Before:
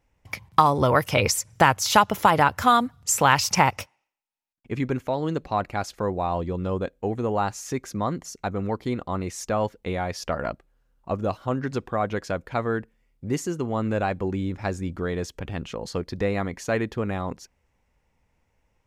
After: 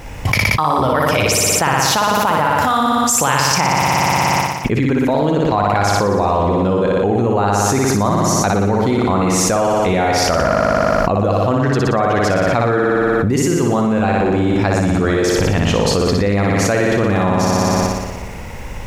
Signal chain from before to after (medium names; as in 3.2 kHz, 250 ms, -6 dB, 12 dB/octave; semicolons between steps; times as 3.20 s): flutter echo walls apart 10.2 m, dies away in 1.2 s; level flattener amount 100%; trim -3 dB